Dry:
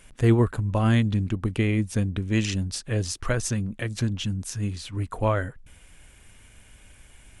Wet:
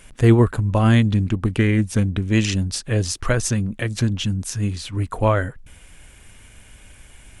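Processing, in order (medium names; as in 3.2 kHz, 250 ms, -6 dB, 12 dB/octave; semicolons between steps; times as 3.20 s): 1.24–2.24 s: loudspeaker Doppler distortion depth 0.15 ms; trim +5.5 dB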